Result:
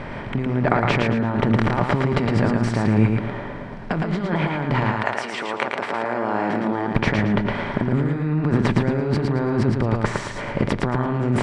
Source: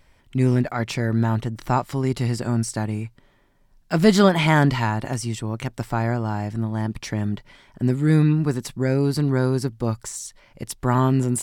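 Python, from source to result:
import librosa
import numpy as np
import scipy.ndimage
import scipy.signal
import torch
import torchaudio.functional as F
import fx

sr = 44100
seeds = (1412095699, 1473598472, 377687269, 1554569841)

y = fx.bin_compress(x, sr, power=0.6)
y = scipy.signal.sosfilt(scipy.signal.butter(2, 2100.0, 'lowpass', fs=sr, output='sos'), y)
y = fx.over_compress(y, sr, threshold_db=-24.0, ratio=-1.0)
y = fx.highpass(y, sr, hz=fx.line((4.91, 860.0), (6.93, 210.0)), slope=12, at=(4.91, 6.93), fade=0.02)
y = fx.echo_feedback(y, sr, ms=112, feedback_pct=32, wet_db=-3.5)
y = y * 10.0 ** (2.5 / 20.0)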